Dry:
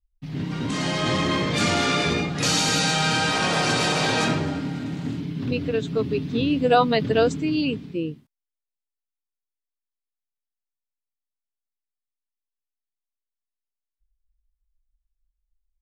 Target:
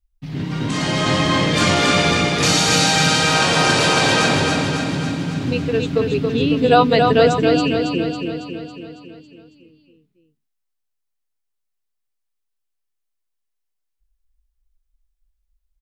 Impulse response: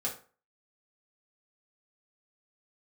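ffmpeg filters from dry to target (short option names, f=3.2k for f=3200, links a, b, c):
-af "equalizer=f=220:t=o:w=0.77:g=-2,aecho=1:1:276|552|828|1104|1380|1656|1932|2208:0.631|0.366|0.212|0.123|0.0714|0.0414|0.024|0.0139,volume=4.5dB"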